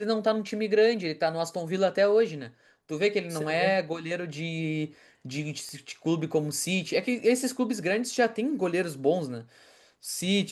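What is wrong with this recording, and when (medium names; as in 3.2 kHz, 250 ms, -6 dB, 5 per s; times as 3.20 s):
5.69 s: pop -28 dBFS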